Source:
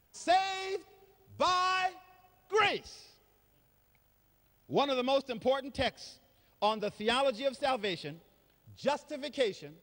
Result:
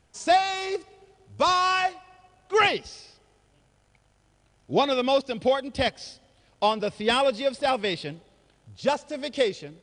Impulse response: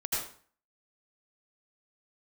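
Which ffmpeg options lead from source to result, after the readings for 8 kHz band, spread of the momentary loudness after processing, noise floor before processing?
+7.0 dB, 11 LU, -69 dBFS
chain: -af "aresample=22050,aresample=44100,volume=2.24"

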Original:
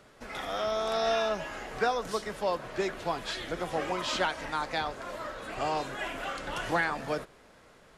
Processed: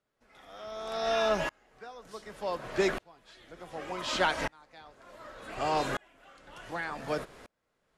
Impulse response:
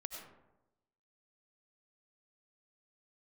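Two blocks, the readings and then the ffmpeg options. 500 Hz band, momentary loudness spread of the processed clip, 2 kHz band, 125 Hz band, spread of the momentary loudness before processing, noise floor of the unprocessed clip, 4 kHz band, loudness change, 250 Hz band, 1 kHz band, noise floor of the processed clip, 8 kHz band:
-1.5 dB, 21 LU, -2.5 dB, -2.0 dB, 9 LU, -57 dBFS, -2.5 dB, -0.5 dB, -1.0 dB, -3.0 dB, -79 dBFS, -2.0 dB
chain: -af "aeval=exprs='val(0)*pow(10,-35*if(lt(mod(-0.67*n/s,1),2*abs(-0.67)/1000),1-mod(-0.67*n/s,1)/(2*abs(-0.67)/1000),(mod(-0.67*n/s,1)-2*abs(-0.67)/1000)/(1-2*abs(-0.67)/1000))/20)':c=same,volume=2.37"

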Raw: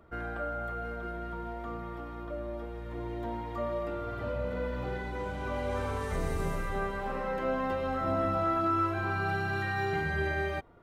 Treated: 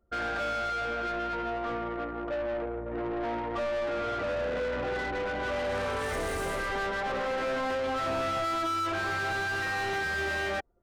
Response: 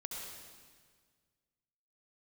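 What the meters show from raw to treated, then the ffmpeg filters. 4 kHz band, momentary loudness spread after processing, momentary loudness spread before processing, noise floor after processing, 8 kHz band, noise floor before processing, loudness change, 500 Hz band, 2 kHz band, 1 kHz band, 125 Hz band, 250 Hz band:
+10.0 dB, 4 LU, 10 LU, -36 dBFS, +9.0 dB, -40 dBFS, +2.5 dB, +3.0 dB, +5.0 dB, +2.0 dB, -6.5 dB, -1.0 dB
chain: -filter_complex "[0:a]equalizer=f=160:t=o:w=0.67:g=-9,equalizer=f=400:t=o:w=0.67:g=-3,equalizer=f=1000:t=o:w=0.67:g=-9,equalizer=f=2500:t=o:w=0.67:g=-4,equalizer=f=10000:t=o:w=0.67:g=8,anlmdn=0.1,asplit=2[s0][s1];[s1]highpass=f=720:p=1,volume=31.6,asoftclip=type=tanh:threshold=0.0841[s2];[s0][s2]amix=inputs=2:normalize=0,lowpass=f=2800:p=1,volume=0.501,volume=0.75"

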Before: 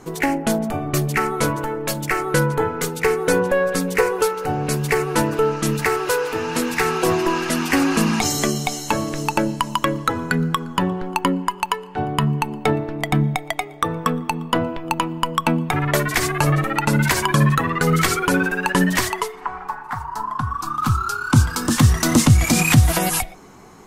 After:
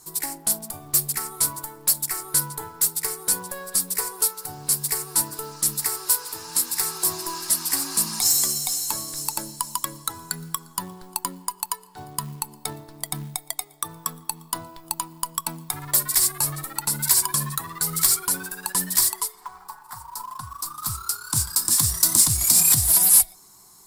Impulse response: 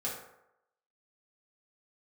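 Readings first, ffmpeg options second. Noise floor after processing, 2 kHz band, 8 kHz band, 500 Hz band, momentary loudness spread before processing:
-51 dBFS, -15.5 dB, +7.5 dB, -20.0 dB, 8 LU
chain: -af "equalizer=f=250:t=o:w=0.33:g=-9,equalizer=f=500:t=o:w=0.33:g=-11,equalizer=f=1000:t=o:w=0.33:g=7,equalizer=f=6300:t=o:w=0.33:g=-11,aexciter=amount=14.4:drive=6.5:freq=4200,acrusher=bits=4:mode=log:mix=0:aa=0.000001,volume=0.168"

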